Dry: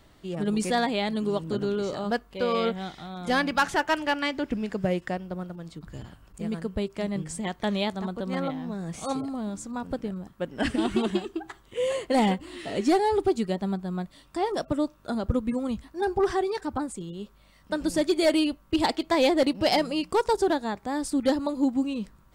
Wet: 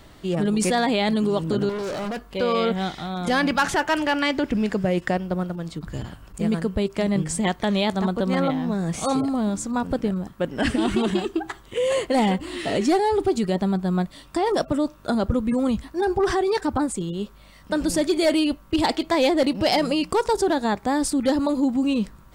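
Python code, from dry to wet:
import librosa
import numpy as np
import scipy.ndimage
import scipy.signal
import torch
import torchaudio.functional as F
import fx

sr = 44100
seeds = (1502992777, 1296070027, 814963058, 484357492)

p1 = fx.over_compress(x, sr, threshold_db=-29.0, ratio=-0.5)
p2 = x + F.gain(torch.from_numpy(p1), -1.5).numpy()
p3 = fx.clip_hard(p2, sr, threshold_db=-28.0, at=(1.69, 2.26))
y = F.gain(torch.from_numpy(p3), 1.5).numpy()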